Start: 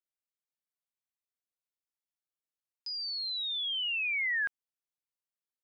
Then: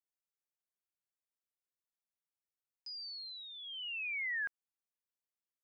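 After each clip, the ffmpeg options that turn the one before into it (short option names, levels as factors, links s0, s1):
-af "equalizer=f=3600:t=o:w=0.5:g=-9.5,volume=0.531"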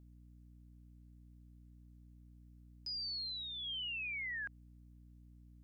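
-af "alimiter=level_in=8.41:limit=0.0631:level=0:latency=1,volume=0.119,aeval=exprs='val(0)+0.000794*(sin(2*PI*60*n/s)+sin(2*PI*2*60*n/s)/2+sin(2*PI*3*60*n/s)/3+sin(2*PI*4*60*n/s)/4+sin(2*PI*5*60*n/s)/5)':c=same,volume=1.68"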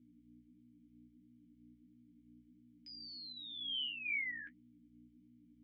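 -filter_complex "[0:a]flanger=delay=8.6:depth=8.2:regen=31:speed=1.5:shape=sinusoidal,asplit=3[s0][s1][s2];[s0]bandpass=f=270:t=q:w=8,volume=1[s3];[s1]bandpass=f=2290:t=q:w=8,volume=0.501[s4];[s2]bandpass=f=3010:t=q:w=8,volume=0.355[s5];[s3][s4][s5]amix=inputs=3:normalize=0,volume=5.62"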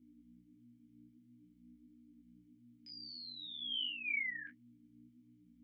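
-af "flanger=delay=20:depth=6.1:speed=0.51,volume=1.5"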